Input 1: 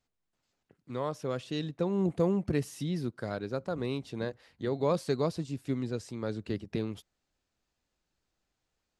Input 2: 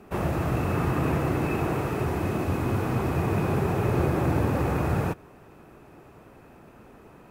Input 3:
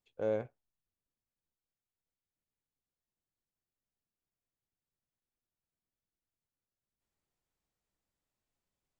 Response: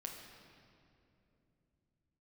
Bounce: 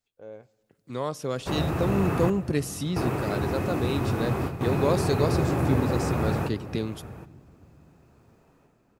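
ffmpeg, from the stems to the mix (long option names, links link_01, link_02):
-filter_complex "[0:a]highshelf=frequency=5000:gain=9.5,dynaudnorm=framelen=190:gausssize=7:maxgain=10dB,volume=-7dB,asplit=3[link_01][link_02][link_03];[link_02]volume=-18.5dB[link_04];[1:a]adelay=1350,volume=-3dB,asplit=3[link_05][link_06][link_07];[link_05]atrim=end=2.3,asetpts=PTS-STARTPTS,afade=type=out:start_time=2.296:duration=0.004:curve=hsin[link_08];[link_06]atrim=start=2.3:end=2.96,asetpts=PTS-STARTPTS,volume=0[link_09];[link_07]atrim=start=2.96,asetpts=PTS-STARTPTS,afade=type=in:duration=0.004:curve=hsin[link_10];[link_08][link_09][link_10]concat=n=3:v=0:a=1,asplit=3[link_11][link_12][link_13];[link_12]volume=-7dB[link_14];[link_13]volume=-15dB[link_15];[2:a]volume=-11dB,asplit=2[link_16][link_17];[link_17]volume=-16dB[link_18];[link_03]apad=whole_len=381891[link_19];[link_11][link_19]sidechaingate=range=-33dB:threshold=-50dB:ratio=16:detection=peak[link_20];[3:a]atrim=start_sample=2205[link_21];[link_04][link_14][link_18]amix=inputs=3:normalize=0[link_22];[link_22][link_21]afir=irnorm=-1:irlink=0[link_23];[link_15]aecho=0:1:770:1[link_24];[link_01][link_20][link_16][link_23][link_24]amix=inputs=5:normalize=0"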